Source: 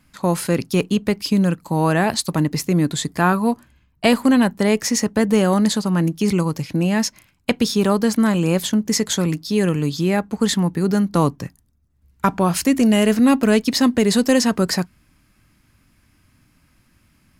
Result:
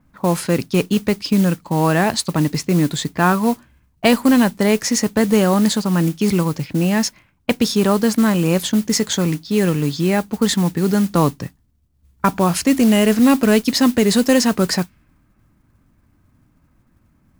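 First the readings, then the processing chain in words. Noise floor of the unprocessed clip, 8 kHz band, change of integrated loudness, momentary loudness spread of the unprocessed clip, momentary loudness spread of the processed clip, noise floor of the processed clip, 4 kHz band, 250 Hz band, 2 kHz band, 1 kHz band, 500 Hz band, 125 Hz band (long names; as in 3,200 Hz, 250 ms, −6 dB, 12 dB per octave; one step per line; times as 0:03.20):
−61 dBFS, +1.5 dB, +1.5 dB, 6 LU, 7 LU, −60 dBFS, +1.5 dB, +1.5 dB, +1.5 dB, +1.5 dB, +1.5 dB, +1.5 dB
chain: low-pass that shuts in the quiet parts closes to 1,100 Hz, open at −15 dBFS
noise that follows the level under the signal 20 dB
level +1.5 dB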